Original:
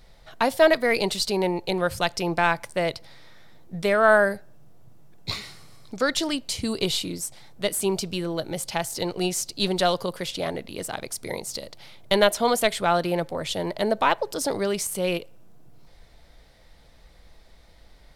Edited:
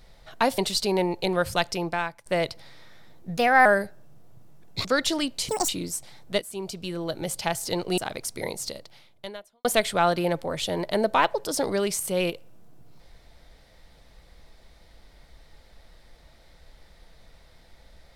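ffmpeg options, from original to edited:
ffmpeg -i in.wav -filter_complex "[0:a]asplit=11[link_01][link_02][link_03][link_04][link_05][link_06][link_07][link_08][link_09][link_10][link_11];[link_01]atrim=end=0.582[link_12];[link_02]atrim=start=1.028:end=2.71,asetpts=PTS-STARTPTS,afade=type=out:start_time=1.042:duration=0.64:silence=0.0891251[link_13];[link_03]atrim=start=2.71:end=3.824,asetpts=PTS-STARTPTS,afade=type=in:duration=0.004:curve=hsin:silence=0.0891251[link_14];[link_04]atrim=start=3.82:end=4.16,asetpts=PTS-STARTPTS,asetrate=52479,aresample=44100[link_15];[link_05]atrim=start=4.156:end=5.352[link_16];[link_06]atrim=start=5.948:end=6.594[link_17];[link_07]atrim=start=6.59:end=6.98,asetpts=PTS-STARTPTS,asetrate=85554,aresample=44100,atrim=end_sample=8865,asetpts=PTS-STARTPTS[link_18];[link_08]atrim=start=6.976:end=7.71,asetpts=PTS-STARTPTS,afade=type=out:start_time=0.73:duration=0.004:curve=hsin:silence=0.158489[link_19];[link_09]atrim=start=7.71:end=9.272,asetpts=PTS-STARTPTS,afade=type=in:duration=0.86:silence=0.158489[link_20];[link_10]atrim=start=10.848:end=12.52,asetpts=PTS-STARTPTS,afade=type=out:start_time=0.682:duration=0.99:curve=qua[link_21];[link_11]atrim=start=12.52,asetpts=PTS-STARTPTS,afade=type=in:duration=0.004:curve=hsin[link_22];[link_13][link_14]concat=n=2:v=0:a=1[link_23];[link_12][link_23]acrossfade=duration=0.004:curve1=hsin:curve2=hsin[link_24];[link_24][link_15]acrossfade=duration=0.004:curve1=hsin:curve2=hsin[link_25];[link_25][link_16]acrossfade=duration=0.004:curve1=hsin:curve2=hsin[link_26];[link_26][link_17]acrossfade=duration=0.004:curve1=hsin:curve2=hsin[link_27];[link_27][link_18]acrossfade=duration=0.004:curve1=hsin:curve2=hsin[link_28];[link_19][link_20]concat=n=2:v=0:a=1[link_29];[link_28][link_29]acrossfade=duration=0.004:curve1=hsin:curve2=hsin[link_30];[link_21][link_22]concat=n=2:v=0:a=1[link_31];[link_30][link_31]acrossfade=duration=0.004:curve1=hsin:curve2=hsin" out.wav

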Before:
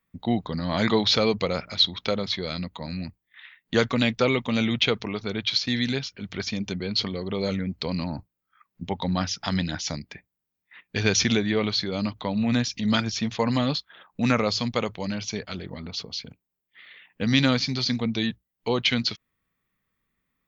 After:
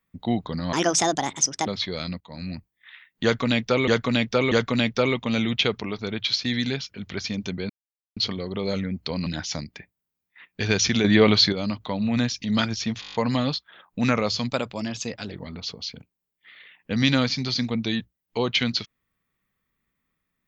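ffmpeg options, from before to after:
ffmpeg -i in.wav -filter_complex "[0:a]asplit=19[link_01][link_02][link_03][link_04][link_05][link_06][link_07][link_08][link_09][link_10][link_11][link_12][link_13][link_14][link_15][link_16][link_17][link_18][link_19];[link_01]atrim=end=0.734[link_20];[link_02]atrim=start=0.73:end=2.17,asetpts=PTS-STARTPTS,asetrate=67914,aresample=44100,atrim=end_sample=41236,asetpts=PTS-STARTPTS[link_21];[link_03]atrim=start=2.166:end=2.71,asetpts=PTS-STARTPTS,afade=type=out:start_time=0.54:duration=0.004:curve=hsin:silence=0.0749894[link_22];[link_04]atrim=start=2.71:end=4.382,asetpts=PTS-STARTPTS,afade=type=in:duration=0.36:curve=qsin:silence=0.0749894[link_23];[link_05]atrim=start=3.738:end=4.382[link_24];[link_06]atrim=start=3.738:end=6.92,asetpts=PTS-STARTPTS,afade=type=out:start_time=3.178:duration=0.004:curve=hsin,apad=pad_dur=0.47[link_25];[link_07]atrim=start=6.92:end=8.022,asetpts=PTS-STARTPTS,afade=type=in:duration=0.004:curve=hsin[link_26];[link_08]atrim=start=9.618:end=11.402[link_27];[link_09]atrim=start=11.398:end=11.882,asetpts=PTS-STARTPTS,volume=8dB[link_28];[link_10]atrim=start=11.878:end=13.382[link_29];[link_11]atrim=start=13.358:end=13.382[link_30];[link_12]atrim=start=13.358:end=13.382[link_31];[link_13]atrim=start=13.358:end=13.382[link_32];[link_14]atrim=start=13.358:end=13.382[link_33];[link_15]atrim=start=13.358:end=13.382[link_34];[link_16]atrim=start=13.358:end=13.382[link_35];[link_17]atrim=start=13.358:end=14.704[link_36];[link_18]atrim=start=14.7:end=15.62,asetpts=PTS-STARTPTS,asetrate=48951,aresample=44100,atrim=end_sample=36551,asetpts=PTS-STARTPTS[link_37];[link_19]atrim=start=15.616[link_38];[link_20][link_21]acrossfade=duration=0.004:curve1=hsin:curve2=hsin[link_39];[link_22][link_23]concat=n=2:v=0:a=1[link_40];[link_39][link_40]acrossfade=duration=0.004:curve1=hsin:curve2=hsin[link_41];[link_41][link_24]acrossfade=duration=0.004:curve1=hsin:curve2=hsin[link_42];[link_25][link_26]concat=n=2:v=0:a=1[link_43];[link_42][link_43]acrossfade=duration=0.004:curve1=hsin:curve2=hsin[link_44];[link_44][link_27]acrossfade=duration=0.004:curve1=hsin:curve2=hsin[link_45];[link_45][link_28]acrossfade=duration=0.004:curve1=hsin:curve2=hsin[link_46];[link_46][link_29]acrossfade=duration=0.004:curve1=hsin:curve2=hsin[link_47];[link_47][link_30]acrossfade=duration=0.004:curve1=hsin:curve2=hsin[link_48];[link_48][link_31]acrossfade=duration=0.004:curve1=hsin:curve2=hsin[link_49];[link_49][link_32]acrossfade=duration=0.004:curve1=hsin:curve2=hsin[link_50];[link_50][link_33]acrossfade=duration=0.004:curve1=hsin:curve2=hsin[link_51];[link_51][link_34]acrossfade=duration=0.004:curve1=hsin:curve2=hsin[link_52];[link_52][link_35]acrossfade=duration=0.004:curve1=hsin:curve2=hsin[link_53];[link_53][link_36]acrossfade=duration=0.004:curve1=hsin:curve2=hsin[link_54];[link_54][link_37]acrossfade=duration=0.004:curve1=hsin:curve2=hsin[link_55];[link_55][link_38]acrossfade=duration=0.004:curve1=hsin:curve2=hsin" out.wav

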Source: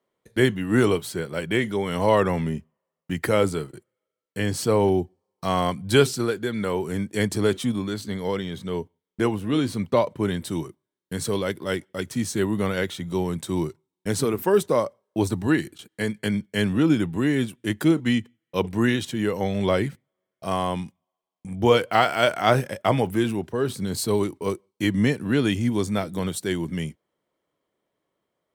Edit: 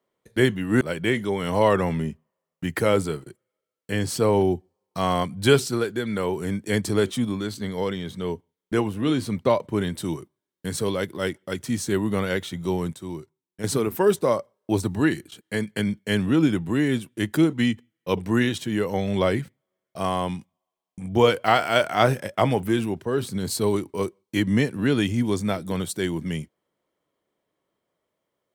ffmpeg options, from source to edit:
ffmpeg -i in.wav -filter_complex "[0:a]asplit=4[link_01][link_02][link_03][link_04];[link_01]atrim=end=0.812[link_05];[link_02]atrim=start=1.278:end=13.402[link_06];[link_03]atrim=start=13.398:end=14.112,asetpts=PTS-STARTPTS,volume=-8.5dB[link_07];[link_04]atrim=start=14.108[link_08];[link_05][link_06]acrossfade=duration=0.004:curve1=hsin:curve2=hsin[link_09];[link_09][link_07]acrossfade=duration=0.004:curve1=hsin:curve2=hsin[link_10];[link_10][link_08]acrossfade=duration=0.004:curve1=hsin:curve2=hsin" out.wav

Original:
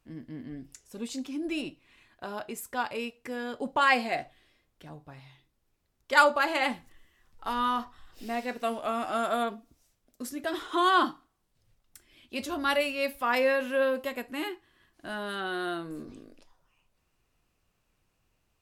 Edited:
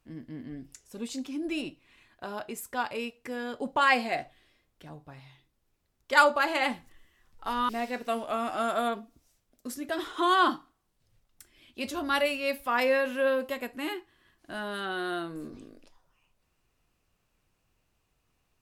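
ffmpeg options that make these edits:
ffmpeg -i in.wav -filter_complex "[0:a]asplit=2[link_01][link_02];[link_01]atrim=end=7.692[link_03];[link_02]atrim=start=8.238[link_04];[link_03][link_04]acrossfade=duration=0.004:curve1=hsin:curve2=hsin" out.wav

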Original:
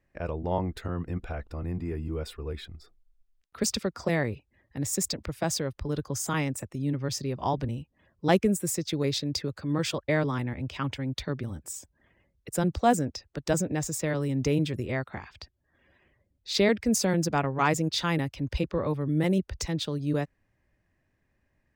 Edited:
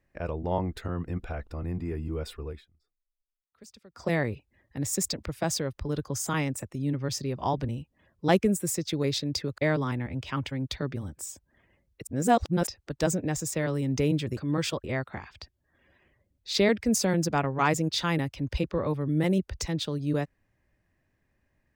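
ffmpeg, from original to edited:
ffmpeg -i in.wav -filter_complex "[0:a]asplit=8[link_01][link_02][link_03][link_04][link_05][link_06][link_07][link_08];[link_01]atrim=end=2.65,asetpts=PTS-STARTPTS,afade=type=out:start_time=2.43:duration=0.22:silence=0.0668344[link_09];[link_02]atrim=start=2.65:end=3.89,asetpts=PTS-STARTPTS,volume=-23.5dB[link_10];[link_03]atrim=start=3.89:end=9.582,asetpts=PTS-STARTPTS,afade=type=in:duration=0.22:silence=0.0668344[link_11];[link_04]atrim=start=10.048:end=12.542[link_12];[link_05]atrim=start=12.538:end=13.142,asetpts=PTS-STARTPTS,areverse[link_13];[link_06]atrim=start=13.138:end=14.842[link_14];[link_07]atrim=start=9.578:end=10.052[link_15];[link_08]atrim=start=14.838[link_16];[link_09][link_10][link_11]concat=n=3:v=0:a=1[link_17];[link_17][link_12]acrossfade=duration=0.004:curve1=hsin:curve2=hsin[link_18];[link_18][link_13]acrossfade=duration=0.004:curve1=hsin:curve2=hsin[link_19];[link_19][link_14]acrossfade=duration=0.004:curve1=hsin:curve2=hsin[link_20];[link_20][link_15]acrossfade=duration=0.004:curve1=hsin:curve2=hsin[link_21];[link_21][link_16]acrossfade=duration=0.004:curve1=hsin:curve2=hsin" out.wav

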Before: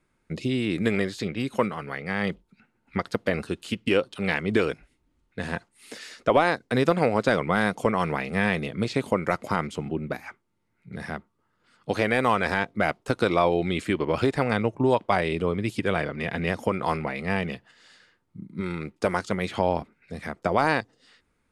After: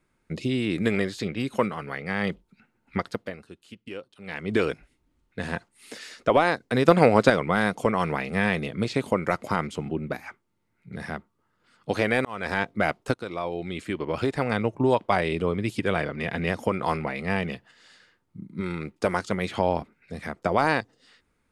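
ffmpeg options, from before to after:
ffmpeg -i in.wav -filter_complex "[0:a]asplit=7[link_01][link_02][link_03][link_04][link_05][link_06][link_07];[link_01]atrim=end=3.36,asetpts=PTS-STARTPTS,afade=type=out:start_time=2.99:duration=0.37:silence=0.16788[link_08];[link_02]atrim=start=3.36:end=4.25,asetpts=PTS-STARTPTS,volume=-15.5dB[link_09];[link_03]atrim=start=4.25:end=6.882,asetpts=PTS-STARTPTS,afade=type=in:duration=0.37:silence=0.16788[link_10];[link_04]atrim=start=6.878:end=7.302,asetpts=PTS-STARTPTS,volume=5dB[link_11];[link_05]atrim=start=7.298:end=12.25,asetpts=PTS-STARTPTS,afade=type=out:start_time=4.948:duration=0.004:curve=hsin[link_12];[link_06]atrim=start=12.25:end=13.14,asetpts=PTS-STARTPTS,afade=type=in:duration=0.35,afade=type=out:start_time=0.886:duration=0.004:curve=hsin:silence=0.199526[link_13];[link_07]atrim=start=13.14,asetpts=PTS-STARTPTS,afade=type=in:duration=1.67:silence=0.199526[link_14];[link_08][link_09][link_10]concat=n=3:v=0:a=1[link_15];[link_15][link_11]acrossfade=duration=0.004:curve1=hsin:curve2=hsin[link_16];[link_12][link_13][link_14]concat=n=3:v=0:a=1[link_17];[link_16][link_17]acrossfade=duration=0.004:curve1=hsin:curve2=hsin" out.wav

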